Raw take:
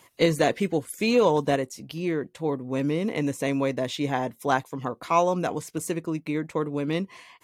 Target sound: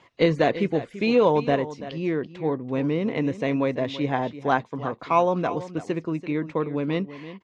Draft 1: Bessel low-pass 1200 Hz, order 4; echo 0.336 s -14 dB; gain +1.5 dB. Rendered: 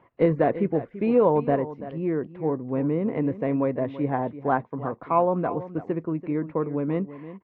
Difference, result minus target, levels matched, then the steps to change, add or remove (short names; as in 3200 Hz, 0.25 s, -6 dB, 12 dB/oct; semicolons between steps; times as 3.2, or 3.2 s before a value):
4000 Hz band -18.5 dB
change: Bessel low-pass 3300 Hz, order 4